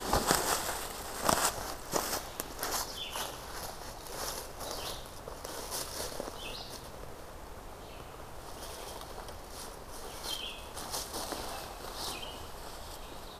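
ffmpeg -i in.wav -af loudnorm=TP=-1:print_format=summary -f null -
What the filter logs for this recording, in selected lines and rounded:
Input Integrated:    -37.5 LUFS
Input True Peak:      -6.5 dBTP
Input LRA:             8.9 LU
Input Threshold:     -47.6 LUFS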